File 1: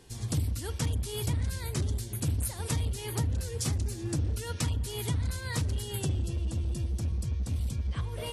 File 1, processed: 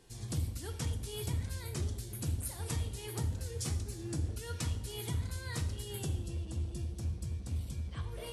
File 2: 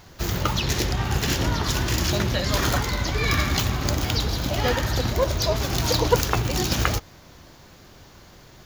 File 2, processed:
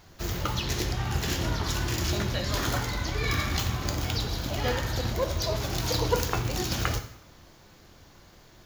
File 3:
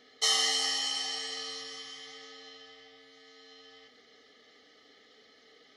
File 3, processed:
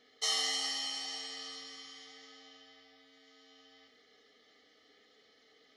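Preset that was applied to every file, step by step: two-slope reverb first 0.62 s, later 2.3 s, from -25 dB, DRR 6.5 dB; trim -6.5 dB

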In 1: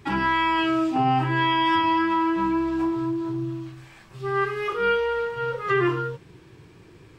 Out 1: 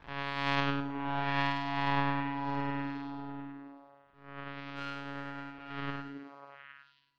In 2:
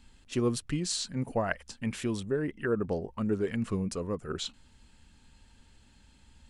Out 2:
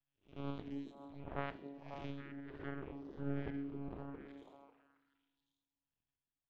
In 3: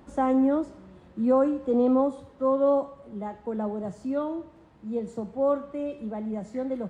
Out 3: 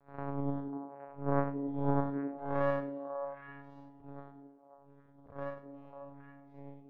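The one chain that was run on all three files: spectral blur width 216 ms; monotone LPC vocoder at 8 kHz 140 Hz; hum notches 60/120/180/240/300/360/420/480/540 Hz; power-law waveshaper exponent 2; tremolo 1.5 Hz, depth 68%; repeats whose band climbs or falls 272 ms, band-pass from 290 Hz, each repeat 1.4 oct, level -2 dB; FDN reverb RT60 2.1 s, low-frequency decay 1×, high-frequency decay 0.85×, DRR 19 dB

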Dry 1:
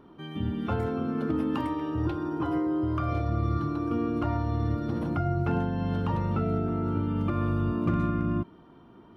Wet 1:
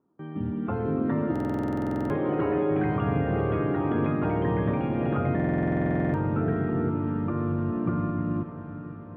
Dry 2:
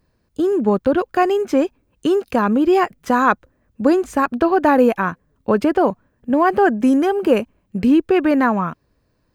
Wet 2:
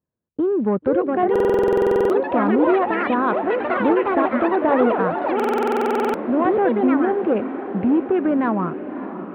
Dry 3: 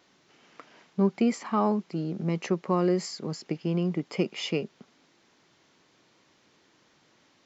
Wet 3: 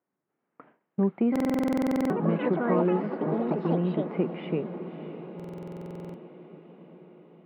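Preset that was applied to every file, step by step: level-controlled noise filter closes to 2 kHz, open at -12.5 dBFS; gate with hold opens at -40 dBFS; treble shelf 3.2 kHz -9 dB; in parallel at -2.5 dB: compression 10:1, threshold -28 dBFS; on the sum: short-mantissa float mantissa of 4-bit; saturation -9.5 dBFS; ever faster or slower copies 582 ms, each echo +5 st, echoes 3; band-pass 110–4100 Hz; distance through air 470 m; echo that smears into a reverb 592 ms, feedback 65%, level -12 dB; buffer glitch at 1.31/5.35 s, samples 2048, times 16; trim -1.5 dB

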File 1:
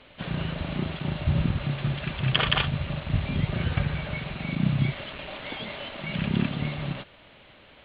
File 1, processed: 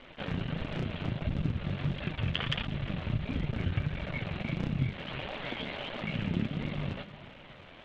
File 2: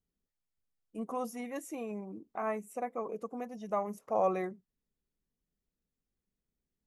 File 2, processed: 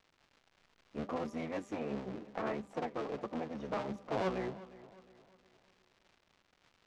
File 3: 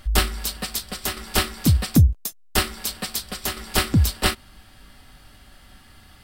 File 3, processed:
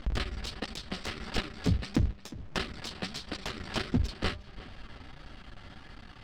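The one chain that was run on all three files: cycle switcher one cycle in 3, muted; de-hum 198.1 Hz, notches 6; dynamic bell 960 Hz, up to -5 dB, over -42 dBFS, Q 0.98; compression 2:1, threshold -36 dBFS; flange 1.5 Hz, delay 3.1 ms, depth 9.1 ms, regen +46%; crackle 290 per s -56 dBFS; distance through air 150 m; on a send: filtered feedback delay 357 ms, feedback 43%, low-pass 4.1 kHz, level -17.5 dB; on the sum: trim +7.5 dB

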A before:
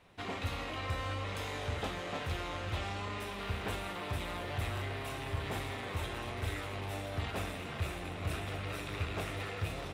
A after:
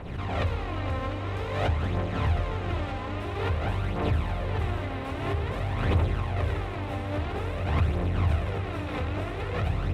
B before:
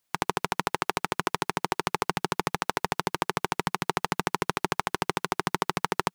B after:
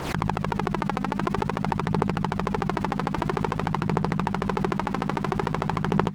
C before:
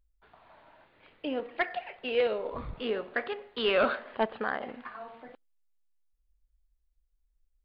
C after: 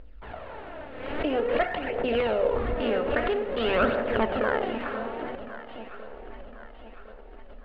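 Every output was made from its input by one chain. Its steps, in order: spectral levelling over time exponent 0.6; low-pass 1.6 kHz 6 dB/octave; bass shelf 220 Hz +7 dB; hum notches 50/100/150/200/250 Hz; in parallel at -1 dB: peak limiter -13 dBFS; on the sum: phaser 0.5 Hz, delay 4 ms, feedback 50%; on a send: echo whose repeats swap between lows and highs 529 ms, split 850 Hz, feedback 65%, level -9.5 dB; on the sum: swell ahead of each attack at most 48 dB/s; trim -5 dB

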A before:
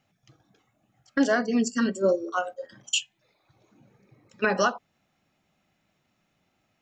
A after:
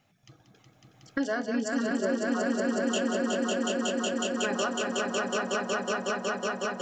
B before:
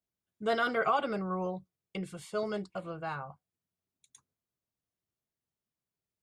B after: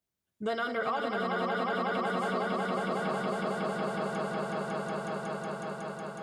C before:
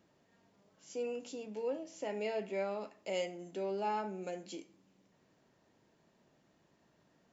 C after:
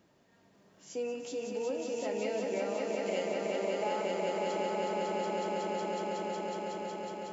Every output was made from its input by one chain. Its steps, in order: on a send: echo with a slow build-up 184 ms, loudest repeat 5, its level -3 dB; on the sum: compression 2.5:1, threshold -35 dBFS; trim +3.5 dB

